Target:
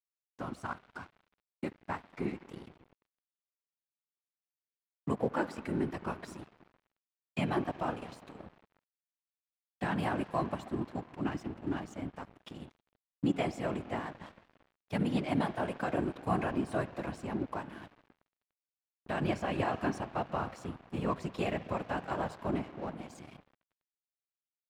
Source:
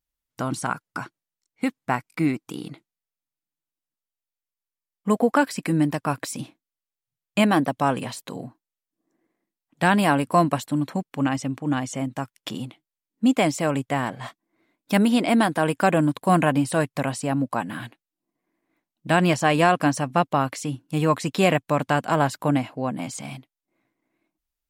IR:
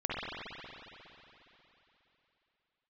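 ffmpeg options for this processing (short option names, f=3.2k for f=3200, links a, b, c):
-filter_complex "[0:a]alimiter=limit=-9dB:level=0:latency=1:release=140,asplit=2[a][b];[1:a]atrim=start_sample=2205[c];[b][c]afir=irnorm=-1:irlink=0,volume=-17dB[d];[a][d]amix=inputs=2:normalize=0,afftfilt=real='hypot(re,im)*cos(2*PI*random(0))':imag='hypot(re,im)*sin(2*PI*random(1))':win_size=512:overlap=0.75,highpass=58,aeval=exprs='sgn(val(0))*max(abs(val(0))-0.00708,0)':c=same,aemphasis=mode=reproduction:type=50kf,volume=-6dB"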